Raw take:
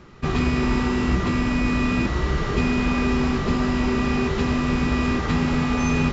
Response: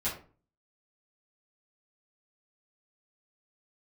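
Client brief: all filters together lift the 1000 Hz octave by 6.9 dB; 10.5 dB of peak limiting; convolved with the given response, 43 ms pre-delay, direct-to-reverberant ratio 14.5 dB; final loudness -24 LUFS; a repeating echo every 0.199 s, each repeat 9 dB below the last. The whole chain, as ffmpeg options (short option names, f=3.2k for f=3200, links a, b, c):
-filter_complex "[0:a]equalizer=f=1k:t=o:g=8.5,alimiter=limit=-18.5dB:level=0:latency=1,aecho=1:1:199|398|597|796:0.355|0.124|0.0435|0.0152,asplit=2[a][b];[1:a]atrim=start_sample=2205,adelay=43[c];[b][c]afir=irnorm=-1:irlink=0,volume=-20dB[d];[a][d]amix=inputs=2:normalize=0,volume=2.5dB"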